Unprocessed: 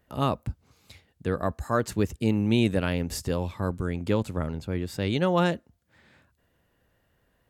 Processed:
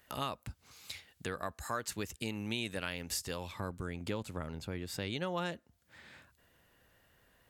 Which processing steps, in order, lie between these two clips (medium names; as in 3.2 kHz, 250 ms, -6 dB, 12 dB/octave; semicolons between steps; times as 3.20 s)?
tilt shelf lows -8 dB, about 890 Hz, from 3.51 s lows -4 dB; compression 2.5:1, threshold -42 dBFS, peak gain reduction 14.5 dB; trim +2 dB